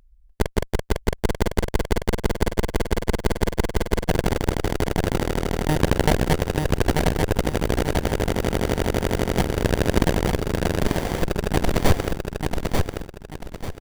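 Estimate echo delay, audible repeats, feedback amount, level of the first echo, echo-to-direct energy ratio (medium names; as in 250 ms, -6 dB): 890 ms, 4, 32%, -4.0 dB, -3.5 dB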